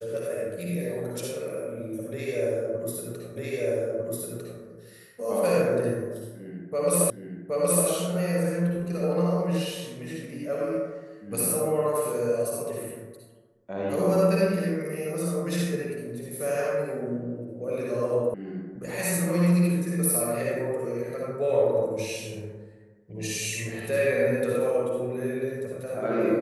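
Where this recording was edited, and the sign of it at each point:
3.36 repeat of the last 1.25 s
7.1 repeat of the last 0.77 s
18.34 sound cut off

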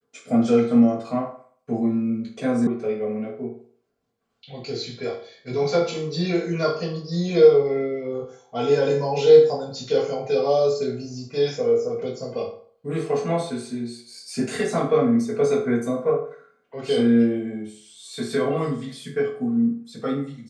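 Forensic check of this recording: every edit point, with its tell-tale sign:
2.67 sound cut off

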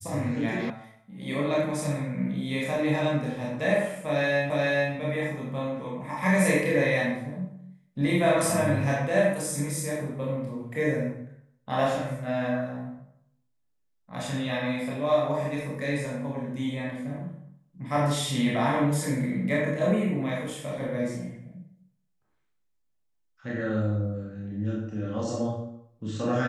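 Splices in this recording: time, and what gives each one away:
0.7 sound cut off
4.5 repeat of the last 0.43 s

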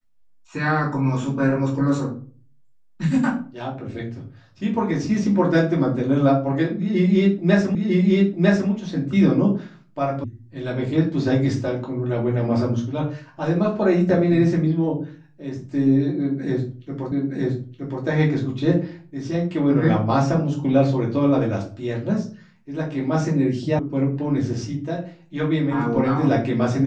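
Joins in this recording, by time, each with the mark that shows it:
7.75 repeat of the last 0.95 s
10.24 sound cut off
17.12 repeat of the last 0.92 s
23.79 sound cut off

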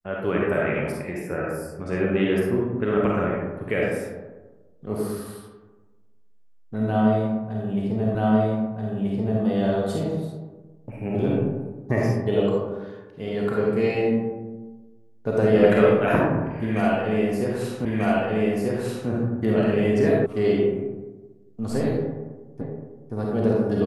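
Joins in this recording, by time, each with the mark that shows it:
8.15 repeat of the last 1.28 s
17.85 repeat of the last 1.24 s
20.26 sound cut off
22.61 repeat of the last 0.52 s

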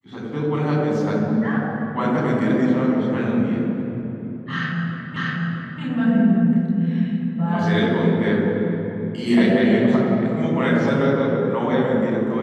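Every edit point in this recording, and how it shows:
5.16 repeat of the last 0.64 s

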